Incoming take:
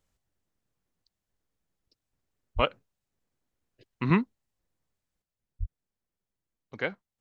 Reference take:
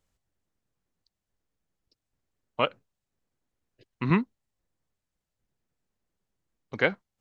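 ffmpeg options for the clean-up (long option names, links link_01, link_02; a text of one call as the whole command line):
ffmpeg -i in.wav -filter_complex "[0:a]asplit=3[link_01][link_02][link_03];[link_01]afade=type=out:start_time=2.55:duration=0.02[link_04];[link_02]highpass=frequency=140:width=0.5412,highpass=frequency=140:width=1.3066,afade=type=in:start_time=2.55:duration=0.02,afade=type=out:start_time=2.67:duration=0.02[link_05];[link_03]afade=type=in:start_time=2.67:duration=0.02[link_06];[link_04][link_05][link_06]amix=inputs=3:normalize=0,asplit=3[link_07][link_08][link_09];[link_07]afade=type=out:start_time=5.59:duration=0.02[link_10];[link_08]highpass=frequency=140:width=0.5412,highpass=frequency=140:width=1.3066,afade=type=in:start_time=5.59:duration=0.02,afade=type=out:start_time=5.71:duration=0.02[link_11];[link_09]afade=type=in:start_time=5.71:duration=0.02[link_12];[link_10][link_11][link_12]amix=inputs=3:normalize=0,asetnsamples=nb_out_samples=441:pad=0,asendcmd='5.22 volume volume 7dB',volume=0dB" out.wav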